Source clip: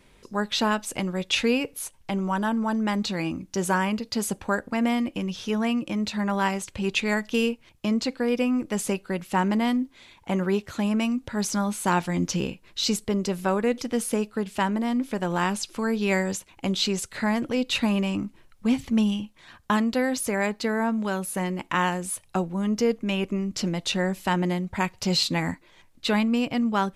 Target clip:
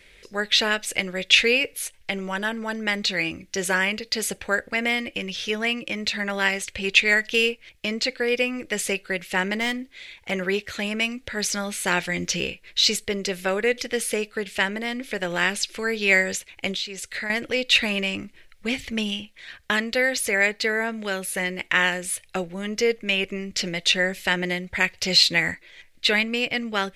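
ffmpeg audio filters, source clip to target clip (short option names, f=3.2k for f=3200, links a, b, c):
-filter_complex "[0:a]equalizer=f=125:t=o:w=1:g=-7,equalizer=f=250:t=o:w=1:g=-9,equalizer=f=500:t=o:w=1:g=4,equalizer=f=1k:t=o:w=1:g=-12,equalizer=f=2k:t=o:w=1:g=11,equalizer=f=4k:t=o:w=1:g=4,asettb=1/sr,asplit=3[a][b][c];[a]atrim=end=9.604[d];[b]atrim=start=9.6:end=10.31,asetpts=PTS-STARTPTS,afade=t=in:d=0.004:c=qsin,afade=t=out:st=0.706:d=0.004:c=qsin,aeval=exprs='clip(val(0),-1,0.0473)':c=same[e];[c]atrim=start=10.306[f];[d][e]acrossfade=d=0.004:c1=hsin:c2=qsin[g];[g][f]acrossfade=d=0.004:c1=qsin:c2=hsin,asettb=1/sr,asplit=3[h][i][j];[h]atrim=end=16.714[k];[i]atrim=start=16.71:end=17.3,asetpts=PTS-STARTPTS,afade=t=in:d=0.004:c=qsin,afade=t=out:st=0.586:d=0.004:c=qsin,acompressor=threshold=-31dB:ratio=5[l];[j]atrim=start=17.296[m];[k][l]acrossfade=d=0.004:c1=hsin:c2=qsin[n];[n][m]acrossfade=d=0.004:c1=qsin:c2=hsin,volume=2.5dB"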